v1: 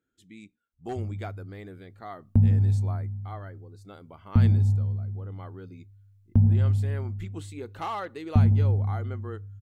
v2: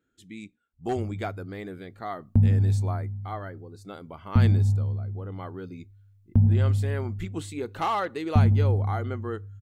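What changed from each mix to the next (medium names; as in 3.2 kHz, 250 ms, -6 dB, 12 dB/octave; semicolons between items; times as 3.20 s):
speech +6.0 dB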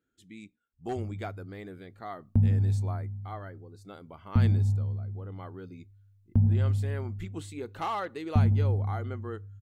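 speech -5.5 dB; background -3.5 dB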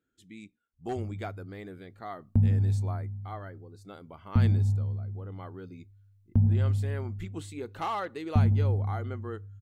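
no change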